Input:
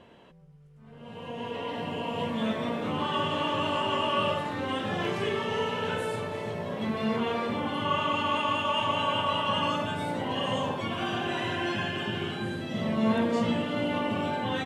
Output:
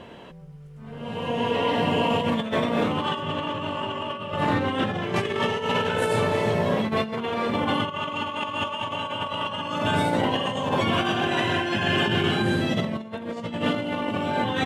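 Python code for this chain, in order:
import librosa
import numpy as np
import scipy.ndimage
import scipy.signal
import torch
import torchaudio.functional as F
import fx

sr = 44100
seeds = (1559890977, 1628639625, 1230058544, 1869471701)

y = fx.bass_treble(x, sr, bass_db=4, treble_db=-5, at=(3.22, 5.16))
y = fx.over_compress(y, sr, threshold_db=-32.0, ratio=-0.5)
y = y * 10.0 ** (7.5 / 20.0)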